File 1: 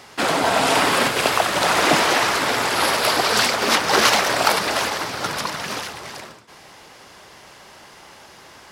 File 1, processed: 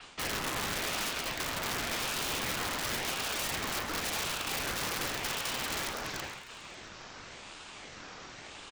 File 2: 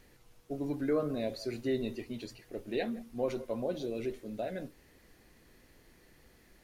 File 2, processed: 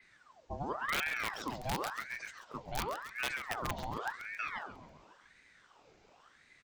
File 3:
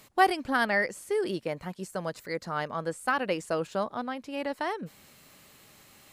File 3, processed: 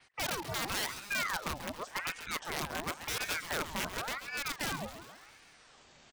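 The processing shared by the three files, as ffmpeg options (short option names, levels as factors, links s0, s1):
-af "adynamicequalizer=threshold=0.0112:dfrequency=4900:dqfactor=1.3:tfrequency=4900:tqfactor=1.3:attack=5:release=100:ratio=0.375:range=2.5:mode=cutabove:tftype=bell,areverse,acompressor=threshold=0.0447:ratio=16,areverse,aresample=16000,aresample=44100,aeval=exprs='(mod(17.8*val(0)+1,2)-1)/17.8':c=same,aecho=1:1:136|272|408|544|680|816:0.282|0.161|0.0916|0.0522|0.0298|0.017,aeval=exprs='val(0)*sin(2*PI*1200*n/s+1200*0.7/0.92*sin(2*PI*0.92*n/s))':c=same"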